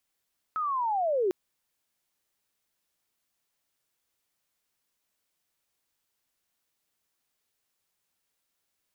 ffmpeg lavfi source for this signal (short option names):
-f lavfi -i "aevalsrc='pow(10,(-27+4.5*t/0.75)/20)*sin(2*PI*(1300*t-950*t*t/(2*0.75)))':d=0.75:s=44100"